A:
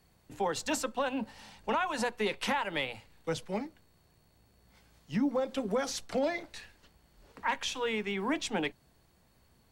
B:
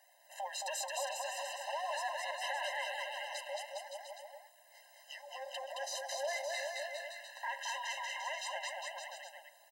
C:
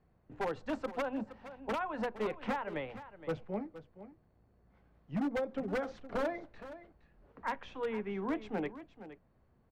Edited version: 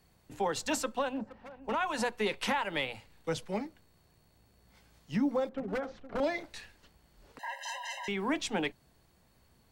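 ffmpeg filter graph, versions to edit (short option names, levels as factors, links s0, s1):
-filter_complex "[2:a]asplit=2[s0][s1];[0:a]asplit=4[s2][s3][s4][s5];[s2]atrim=end=1.24[s6];[s0]atrim=start=1:end=1.83[s7];[s3]atrim=start=1.59:end=5.492[s8];[s1]atrim=start=5.488:end=6.202[s9];[s4]atrim=start=6.198:end=7.392[s10];[1:a]atrim=start=7.388:end=8.082[s11];[s5]atrim=start=8.078[s12];[s6][s7]acrossfade=d=0.24:c1=tri:c2=tri[s13];[s13][s8]acrossfade=d=0.24:c1=tri:c2=tri[s14];[s14][s9]acrossfade=d=0.004:c1=hsin:c2=hsin[s15];[s15][s10]acrossfade=d=0.004:c1=hsin:c2=hsin[s16];[s16][s11]acrossfade=d=0.004:c1=hsin:c2=hsin[s17];[s17][s12]acrossfade=d=0.004:c1=hsin:c2=hsin"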